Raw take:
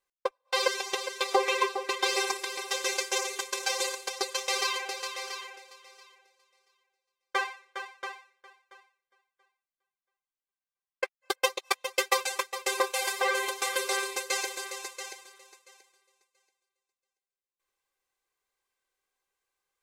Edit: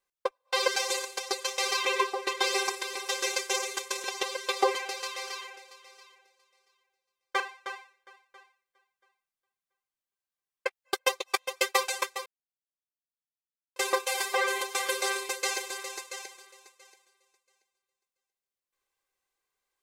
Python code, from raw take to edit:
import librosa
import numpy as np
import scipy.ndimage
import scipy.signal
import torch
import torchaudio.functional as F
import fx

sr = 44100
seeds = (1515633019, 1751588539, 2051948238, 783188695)

y = fx.edit(x, sr, fx.swap(start_s=0.76, length_s=0.71, other_s=3.66, other_length_s=1.09),
    fx.cut(start_s=7.4, length_s=0.37),
    fx.insert_silence(at_s=12.63, length_s=1.5), tone=tone)